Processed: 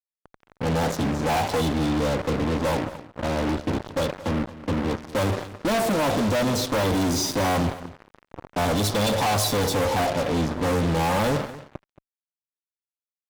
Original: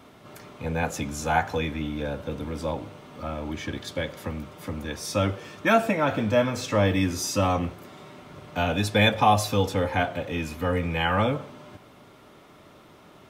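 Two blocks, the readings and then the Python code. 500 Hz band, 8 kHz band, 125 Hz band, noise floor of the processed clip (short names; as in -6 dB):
+2.0 dB, +4.5 dB, +2.0 dB, under -85 dBFS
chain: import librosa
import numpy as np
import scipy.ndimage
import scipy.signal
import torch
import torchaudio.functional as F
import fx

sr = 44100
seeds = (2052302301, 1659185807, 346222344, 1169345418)

y = scipy.signal.sosfilt(scipy.signal.ellip(3, 1.0, 40, [1100.0, 3600.0], 'bandstop', fs=sr, output='sos'), x)
y = fx.env_lowpass(y, sr, base_hz=440.0, full_db=-21.0)
y = fx.highpass(y, sr, hz=100.0, slope=6)
y = fx.peak_eq(y, sr, hz=1700.0, db=-8.0, octaves=0.61)
y = fx.fuzz(y, sr, gain_db=42.0, gate_db=-41.0)
y = y + 10.0 ** (-16.5 / 20.0) * np.pad(y, (int(225 * sr / 1000.0), 0))[:len(y)]
y = F.gain(torch.from_numpy(y), -7.5).numpy()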